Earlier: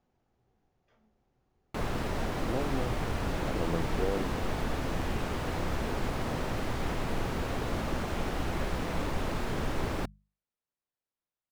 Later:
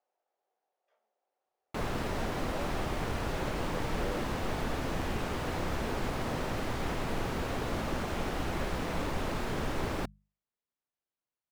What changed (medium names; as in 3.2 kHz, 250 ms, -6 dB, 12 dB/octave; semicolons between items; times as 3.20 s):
speech: add ladder high-pass 490 Hz, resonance 45%; master: add bass shelf 150 Hz -3 dB